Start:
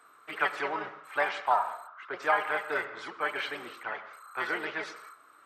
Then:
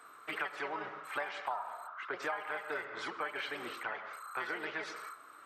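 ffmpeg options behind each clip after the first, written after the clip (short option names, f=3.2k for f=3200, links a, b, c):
-af "acompressor=threshold=-39dB:ratio=5,volume=3dB"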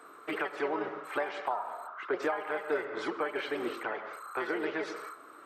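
-af "equalizer=f=360:w=0.74:g=12.5"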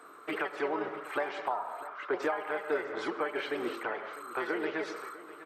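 -af "aecho=1:1:650:0.15"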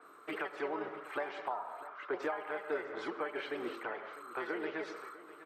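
-af "adynamicequalizer=threshold=0.00158:dfrequency=5100:dqfactor=0.7:tfrequency=5100:tqfactor=0.7:attack=5:release=100:ratio=0.375:range=2:mode=cutabove:tftype=highshelf,volume=-5dB"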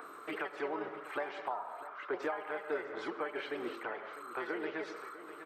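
-af "acompressor=mode=upward:threshold=-41dB:ratio=2.5"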